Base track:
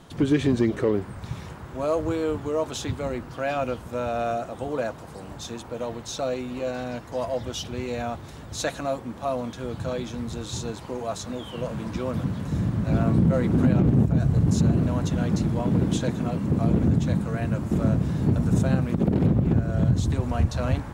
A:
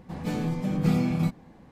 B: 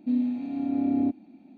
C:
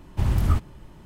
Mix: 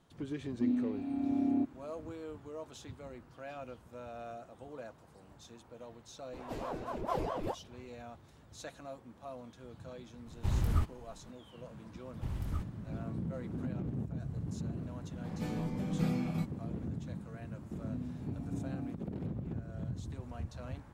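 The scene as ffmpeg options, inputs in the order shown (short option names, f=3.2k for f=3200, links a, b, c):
-filter_complex "[2:a]asplit=2[a][b];[1:a]asplit=2[c][d];[3:a]asplit=2[e][f];[0:a]volume=-18.5dB[g];[c]aeval=exprs='val(0)*sin(2*PI*510*n/s+510*0.75/4.6*sin(2*PI*4.6*n/s))':c=same[h];[b]highpass=240[i];[a]atrim=end=1.57,asetpts=PTS-STARTPTS,volume=-6dB,afade=t=in:d=0.004:c=hsin,afade=t=out:st=1.566:d=0.004:c=hsin,adelay=540[j];[h]atrim=end=1.71,asetpts=PTS-STARTPTS,volume=-9dB,afade=t=in:d=0.004:c=hsin,afade=t=out:st=1.706:d=0.004:c=hsin,adelay=6240[k];[e]atrim=end=1.05,asetpts=PTS-STARTPTS,volume=-9dB,afade=t=in:d=0.004:c=hsin,afade=t=out:st=1.046:d=0.004:c=hsin,adelay=452466S[l];[f]atrim=end=1.05,asetpts=PTS-STARTPTS,volume=-16.5dB,afade=t=in:d=0.004:c=hsin,afade=t=out:st=1.046:d=0.004:c=hsin,adelay=12040[m];[d]atrim=end=1.71,asetpts=PTS-STARTPTS,volume=-9dB,afade=t=in:d=0.004:c=hsin,afade=t=out:st=1.706:d=0.004:c=hsin,adelay=15150[n];[i]atrim=end=1.57,asetpts=PTS-STARTPTS,volume=-16dB,afade=t=in:d=0.004:c=hsin,afade=t=out:st=1.566:d=0.004:c=hsin,adelay=17820[o];[g][j][k][l][m][n][o]amix=inputs=7:normalize=0"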